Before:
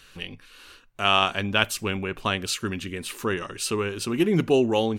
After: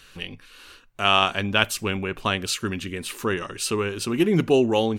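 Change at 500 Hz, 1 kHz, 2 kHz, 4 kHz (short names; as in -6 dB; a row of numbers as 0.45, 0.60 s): +1.5, +1.5, +1.5, +1.5 dB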